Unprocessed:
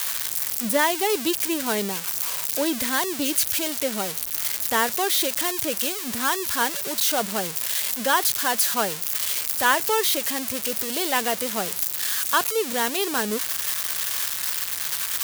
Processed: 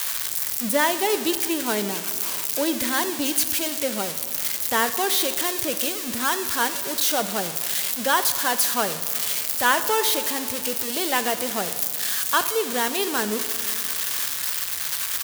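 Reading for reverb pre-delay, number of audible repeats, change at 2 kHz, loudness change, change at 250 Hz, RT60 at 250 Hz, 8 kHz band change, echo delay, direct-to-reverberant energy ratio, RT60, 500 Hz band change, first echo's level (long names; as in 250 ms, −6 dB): 13 ms, 1, +0.5 dB, +0.5 dB, +0.5 dB, 2.5 s, +0.5 dB, 75 ms, 10.5 dB, 2.5 s, +0.5 dB, −18.0 dB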